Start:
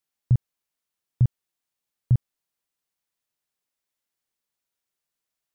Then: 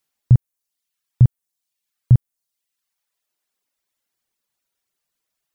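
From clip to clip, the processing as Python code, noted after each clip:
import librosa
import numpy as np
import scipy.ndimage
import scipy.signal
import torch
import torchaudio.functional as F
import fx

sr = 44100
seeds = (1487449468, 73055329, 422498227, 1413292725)

y = fx.dereverb_blind(x, sr, rt60_s=1.0)
y = y * librosa.db_to_amplitude(8.0)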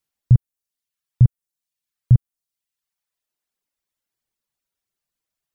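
y = fx.low_shelf(x, sr, hz=190.0, db=7.5)
y = y * librosa.db_to_amplitude(-6.0)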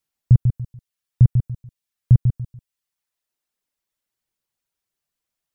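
y = fx.echo_feedback(x, sr, ms=144, feedback_pct=27, wet_db=-7)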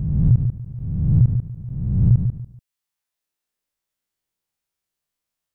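y = fx.spec_swells(x, sr, rise_s=1.44)
y = y * librosa.db_to_amplitude(-3.5)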